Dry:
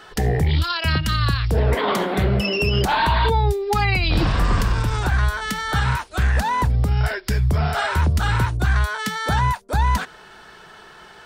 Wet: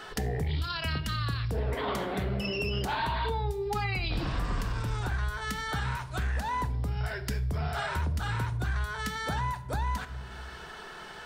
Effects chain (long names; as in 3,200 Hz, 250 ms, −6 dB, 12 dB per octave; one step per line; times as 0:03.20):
on a send at −11 dB: convolution reverb RT60 0.85 s, pre-delay 4 ms
on the sum: downward compressor 2 to 1, threshold −38 dBFS, peak gain reduction 13.5 dB